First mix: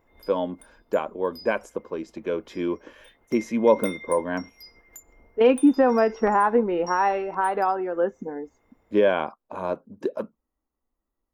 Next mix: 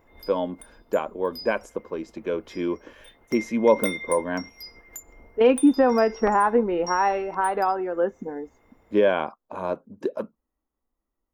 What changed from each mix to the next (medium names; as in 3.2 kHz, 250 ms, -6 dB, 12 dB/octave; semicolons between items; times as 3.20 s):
background +5.5 dB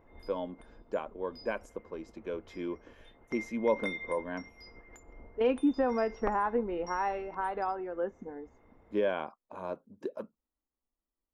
speech -10.0 dB; background: add tape spacing loss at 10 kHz 27 dB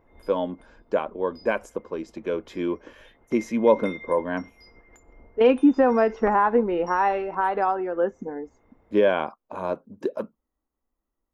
speech +10.0 dB